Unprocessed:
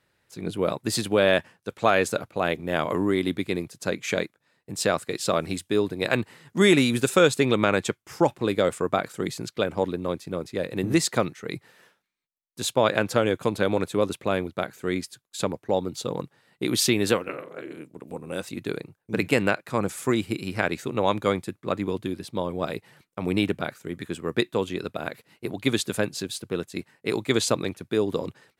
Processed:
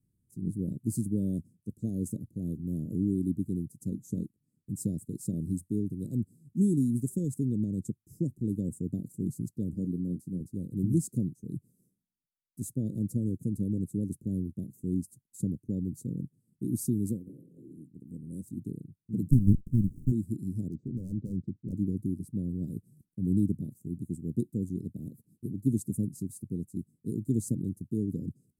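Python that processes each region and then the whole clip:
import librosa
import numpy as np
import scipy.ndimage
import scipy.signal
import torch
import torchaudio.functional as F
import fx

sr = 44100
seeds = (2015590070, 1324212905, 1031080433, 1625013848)

y = fx.chain(x, sr, fx.highpass(hz=130.0, slope=12),
    fx.doubler(ms=22.0, db=-9.5), at=(9.74, 10.41))
y = fx.chain(y, sr, fx.quant_companded(bits=6),
    fx.running_max(window=65), at=(19.31, 20.12))
y = fx.chain(y, sr, fx.lowpass(hz=2900.0, slope=24),
    fx.clip_hard(threshold_db=-24.5), at=(20.68, 21.73))
y = scipy.signal.sosfilt(scipy.signal.cheby2(4, 80, [980.0, 2600.0], 'bandstop', fs=sr, output='sos'), y)
y = fx.high_shelf(y, sr, hz=6000.0, db=-9.5)
y = fx.rider(y, sr, range_db=3, speed_s=2.0)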